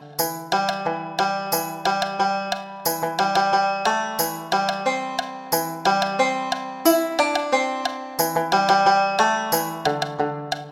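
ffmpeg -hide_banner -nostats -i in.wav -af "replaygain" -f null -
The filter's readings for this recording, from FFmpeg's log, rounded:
track_gain = +2.4 dB
track_peak = 0.496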